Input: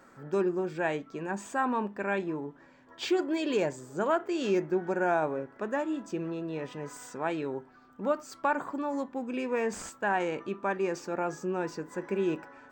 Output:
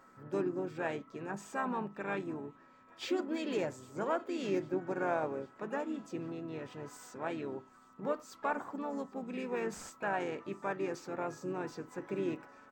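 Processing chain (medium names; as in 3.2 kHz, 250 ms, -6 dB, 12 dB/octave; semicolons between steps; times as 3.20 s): whistle 1.3 kHz -55 dBFS; harmony voices -5 st -10 dB, -3 st -11 dB, +7 st -18 dB; feedback echo behind a high-pass 800 ms, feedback 72%, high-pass 3 kHz, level -23 dB; trim -7 dB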